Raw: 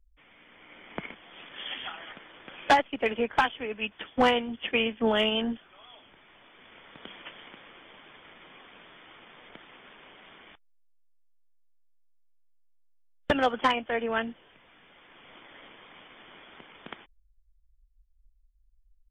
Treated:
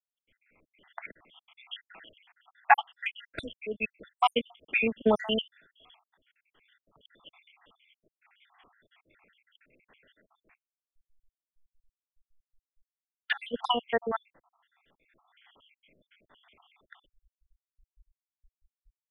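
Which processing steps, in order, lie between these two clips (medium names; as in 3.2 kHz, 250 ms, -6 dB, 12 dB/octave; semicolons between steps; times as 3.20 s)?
random holes in the spectrogram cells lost 76%; three bands expanded up and down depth 40%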